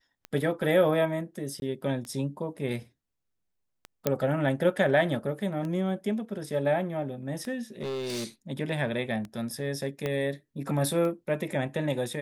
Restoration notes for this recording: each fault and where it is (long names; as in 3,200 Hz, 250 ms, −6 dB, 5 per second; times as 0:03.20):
scratch tick 33 1/3 rpm −24 dBFS
0:01.60–0:01.62: drop-out 21 ms
0:04.07: click −10 dBFS
0:07.80–0:08.25: clipping −29.5 dBFS
0:10.06: click −17 dBFS